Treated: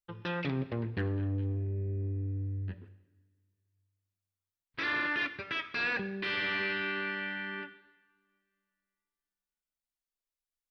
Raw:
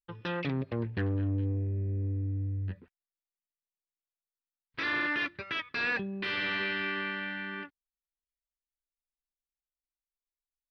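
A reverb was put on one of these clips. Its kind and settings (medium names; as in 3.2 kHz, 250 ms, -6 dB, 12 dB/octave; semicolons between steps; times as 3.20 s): two-slope reverb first 1 s, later 2.7 s, from -19 dB, DRR 11 dB; trim -1 dB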